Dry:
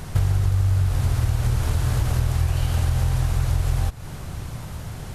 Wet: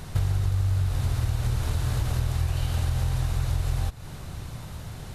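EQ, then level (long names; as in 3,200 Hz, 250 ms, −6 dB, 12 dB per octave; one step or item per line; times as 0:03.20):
parametric band 3,700 Hz +4.5 dB 0.5 octaves
notch filter 3,300 Hz, Q 27
−4.5 dB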